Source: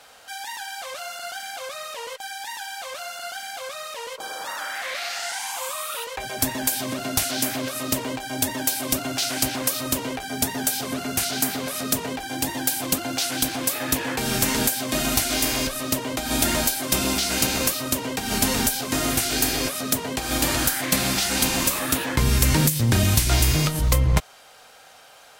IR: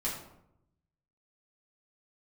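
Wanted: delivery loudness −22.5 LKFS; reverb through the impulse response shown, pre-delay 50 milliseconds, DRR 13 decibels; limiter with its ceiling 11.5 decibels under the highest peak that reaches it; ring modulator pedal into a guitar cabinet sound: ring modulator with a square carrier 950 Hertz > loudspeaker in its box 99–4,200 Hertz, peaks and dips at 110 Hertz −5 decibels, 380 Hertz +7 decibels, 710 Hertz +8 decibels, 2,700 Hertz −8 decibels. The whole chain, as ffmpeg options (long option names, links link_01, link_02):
-filter_complex "[0:a]alimiter=limit=-15dB:level=0:latency=1,asplit=2[link_01][link_02];[1:a]atrim=start_sample=2205,adelay=50[link_03];[link_02][link_03]afir=irnorm=-1:irlink=0,volume=-17.5dB[link_04];[link_01][link_04]amix=inputs=2:normalize=0,aeval=exprs='val(0)*sgn(sin(2*PI*950*n/s))':channel_layout=same,highpass=99,equalizer=frequency=110:width_type=q:width=4:gain=-5,equalizer=frequency=380:width_type=q:width=4:gain=7,equalizer=frequency=710:width_type=q:width=4:gain=8,equalizer=frequency=2700:width_type=q:width=4:gain=-8,lowpass=frequency=4200:width=0.5412,lowpass=frequency=4200:width=1.3066,volume=3.5dB"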